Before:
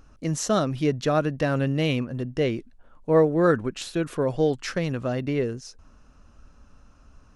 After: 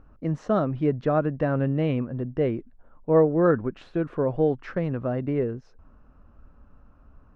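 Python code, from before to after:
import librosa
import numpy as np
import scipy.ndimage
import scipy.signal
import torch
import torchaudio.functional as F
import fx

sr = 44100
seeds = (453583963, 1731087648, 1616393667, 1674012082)

y = scipy.signal.sosfilt(scipy.signal.butter(2, 1400.0, 'lowpass', fs=sr, output='sos'), x)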